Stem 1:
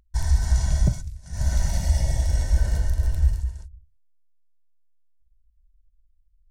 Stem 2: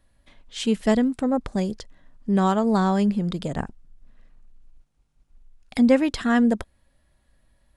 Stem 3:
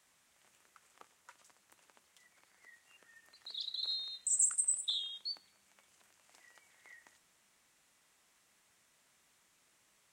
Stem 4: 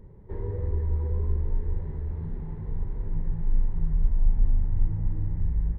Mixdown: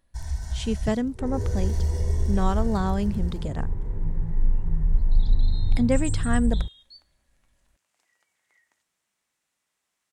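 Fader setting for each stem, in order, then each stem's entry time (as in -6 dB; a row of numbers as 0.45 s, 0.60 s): -9.5 dB, -5.5 dB, -8.5 dB, +2.0 dB; 0.00 s, 0.00 s, 1.65 s, 0.90 s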